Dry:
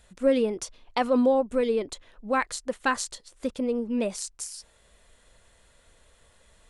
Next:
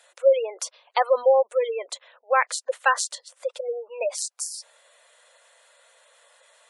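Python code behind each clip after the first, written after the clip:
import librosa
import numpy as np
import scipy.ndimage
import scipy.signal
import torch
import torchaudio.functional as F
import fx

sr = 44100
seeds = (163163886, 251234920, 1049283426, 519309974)

y = scipy.signal.sosfilt(scipy.signal.ellip(4, 1.0, 70, 530.0, 'highpass', fs=sr, output='sos'), x)
y = fx.spec_gate(y, sr, threshold_db=-20, keep='strong')
y = F.gain(torch.from_numpy(y), 6.0).numpy()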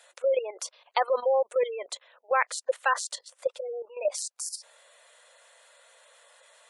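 y = fx.level_steps(x, sr, step_db=12)
y = F.gain(torch.from_numpy(y), 2.0).numpy()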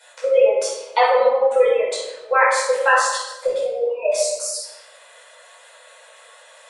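y = fx.room_shoebox(x, sr, seeds[0], volume_m3=470.0, walls='mixed', distance_m=4.8)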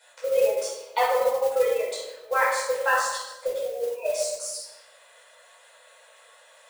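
y = fx.mod_noise(x, sr, seeds[1], snr_db=20)
y = F.gain(torch.from_numpy(y), -7.0).numpy()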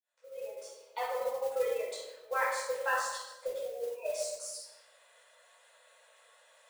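y = fx.fade_in_head(x, sr, length_s=1.72)
y = F.gain(torch.from_numpy(y), -8.5).numpy()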